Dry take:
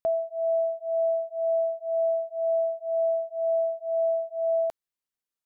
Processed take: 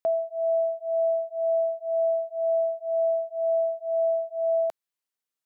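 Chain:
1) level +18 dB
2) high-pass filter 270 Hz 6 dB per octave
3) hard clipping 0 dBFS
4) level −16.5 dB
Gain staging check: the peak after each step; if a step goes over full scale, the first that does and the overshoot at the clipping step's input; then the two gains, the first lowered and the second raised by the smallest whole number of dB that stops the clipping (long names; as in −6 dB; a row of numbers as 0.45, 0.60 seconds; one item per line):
−2.5, −2.5, −2.5, −19.0 dBFS
no step passes full scale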